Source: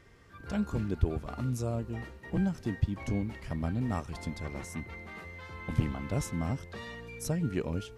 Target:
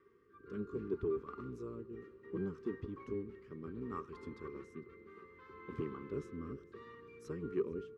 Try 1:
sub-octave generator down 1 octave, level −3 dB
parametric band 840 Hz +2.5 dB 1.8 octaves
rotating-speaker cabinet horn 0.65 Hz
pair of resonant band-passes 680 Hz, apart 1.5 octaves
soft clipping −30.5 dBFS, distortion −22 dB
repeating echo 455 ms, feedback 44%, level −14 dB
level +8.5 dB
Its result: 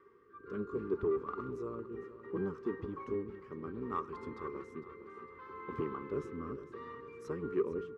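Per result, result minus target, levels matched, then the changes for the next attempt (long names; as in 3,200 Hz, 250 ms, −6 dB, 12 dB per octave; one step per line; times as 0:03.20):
echo-to-direct +9.5 dB; 1,000 Hz band +4.5 dB
change: repeating echo 455 ms, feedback 44%, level −23.5 dB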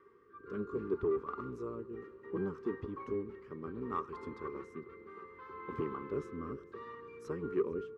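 1,000 Hz band +4.5 dB
change: parametric band 840 Hz −8 dB 1.8 octaves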